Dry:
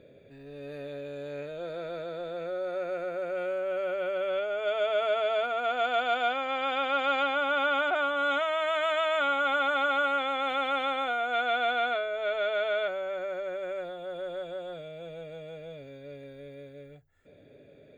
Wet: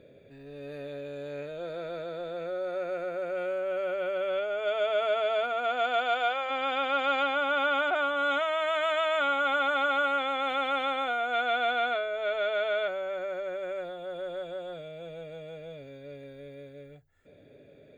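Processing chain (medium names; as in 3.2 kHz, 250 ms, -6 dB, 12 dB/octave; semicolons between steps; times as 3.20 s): 5.53–6.49 s: high-pass 140 Hz -> 410 Hz 24 dB/octave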